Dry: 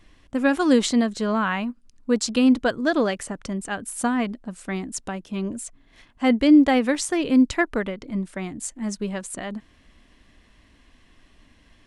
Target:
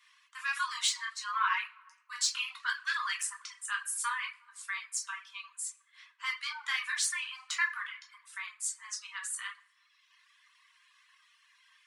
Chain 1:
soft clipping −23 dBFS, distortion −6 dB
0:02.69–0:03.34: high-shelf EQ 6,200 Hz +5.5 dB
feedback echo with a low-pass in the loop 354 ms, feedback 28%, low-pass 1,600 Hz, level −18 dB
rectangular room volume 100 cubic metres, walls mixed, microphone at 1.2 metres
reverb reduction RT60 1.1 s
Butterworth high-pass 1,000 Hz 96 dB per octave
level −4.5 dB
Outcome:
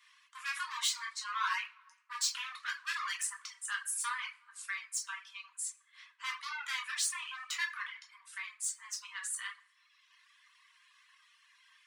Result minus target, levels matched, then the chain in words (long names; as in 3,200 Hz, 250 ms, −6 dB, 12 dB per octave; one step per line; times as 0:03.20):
soft clipping: distortion +9 dB
soft clipping −12.5 dBFS, distortion −15 dB
0:02.69–0:03.34: high-shelf EQ 6,200 Hz +5.5 dB
feedback echo with a low-pass in the loop 354 ms, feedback 28%, low-pass 1,600 Hz, level −18 dB
rectangular room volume 100 cubic metres, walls mixed, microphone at 1.2 metres
reverb reduction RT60 1.1 s
Butterworth high-pass 1,000 Hz 96 dB per octave
level −4.5 dB